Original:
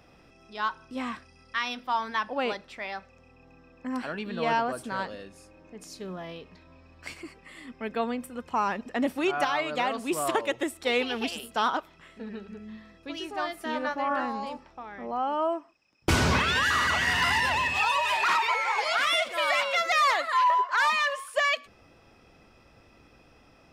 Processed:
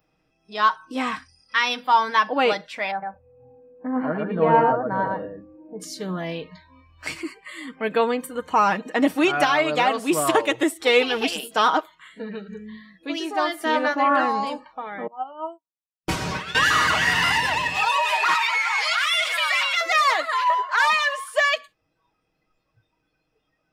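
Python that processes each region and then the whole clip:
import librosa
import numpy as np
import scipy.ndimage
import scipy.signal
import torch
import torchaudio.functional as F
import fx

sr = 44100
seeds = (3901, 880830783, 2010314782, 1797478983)

y = fx.chain(x, sr, fx.lowpass(hz=1100.0, slope=12),
    fx.echo_single(ms=113, db=-3.5), at=(2.91, 5.8))
y = fx.chain(y, sr, fx.comb_fb(f0_hz=190.0, decay_s=0.21, harmonics='all', damping=0.0, mix_pct=70),
    fx.upward_expand(threshold_db=-46.0, expansion=2.5), at=(15.07, 16.55))
y = fx.chain(y, sr, fx.highpass(hz=1300.0, slope=12),
    fx.env_flatten(amount_pct=70), at=(18.34, 19.81))
y = fx.noise_reduce_blind(y, sr, reduce_db=22)
y = y + 0.52 * np.pad(y, (int(6.4 * sr / 1000.0), 0))[:len(y)]
y = fx.rider(y, sr, range_db=3, speed_s=2.0)
y = y * librosa.db_to_amplitude(5.5)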